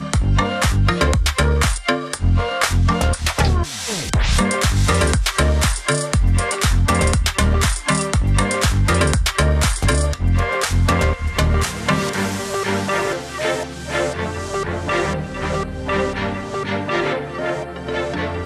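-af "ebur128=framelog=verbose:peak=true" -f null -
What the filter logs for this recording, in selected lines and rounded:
Integrated loudness:
  I:         -19.1 LUFS
  Threshold: -29.1 LUFS
Loudness range:
  LRA:         4.9 LU
  Threshold: -39.0 LUFS
  LRA low:   -22.4 LUFS
  LRA high:  -17.5 LUFS
True peak:
  Peak:       -3.2 dBFS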